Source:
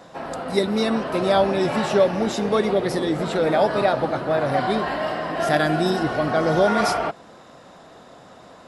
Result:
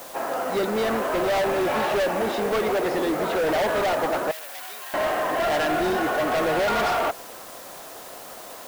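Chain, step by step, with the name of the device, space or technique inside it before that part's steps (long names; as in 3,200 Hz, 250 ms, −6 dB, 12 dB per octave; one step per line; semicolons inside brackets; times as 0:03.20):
aircraft radio (band-pass filter 360–2,500 Hz; hard clipping −25 dBFS, distortion −6 dB; white noise bed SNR 19 dB)
0:04.31–0:04.94: first difference
level +4.5 dB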